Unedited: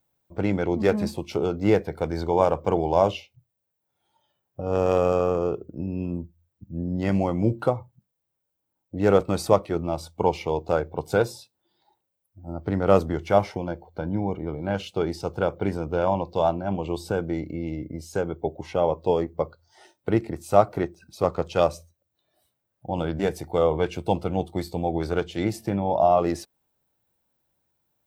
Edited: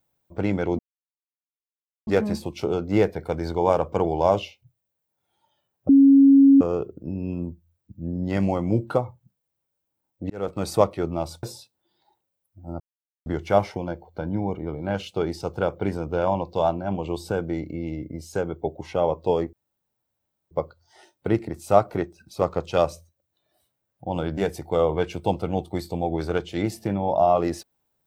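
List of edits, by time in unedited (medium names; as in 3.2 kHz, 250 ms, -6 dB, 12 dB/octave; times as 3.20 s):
0.79 s: insert silence 1.28 s
4.61–5.33 s: bleep 275 Hz -9.5 dBFS
9.02–9.45 s: fade in linear
10.15–11.23 s: delete
12.60–13.06 s: mute
19.33 s: insert room tone 0.98 s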